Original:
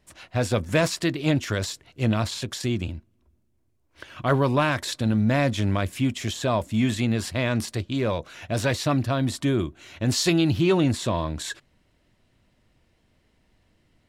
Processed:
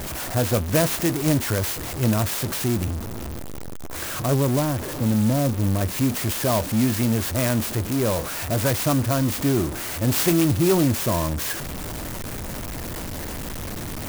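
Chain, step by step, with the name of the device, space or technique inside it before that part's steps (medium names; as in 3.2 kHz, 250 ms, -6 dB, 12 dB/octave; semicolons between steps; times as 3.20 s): 4.26–5.81 s: Bessel low-pass 590 Hz, order 2; early CD player with a faulty converter (jump at every zero crossing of -25 dBFS; sampling jitter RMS 0.091 ms)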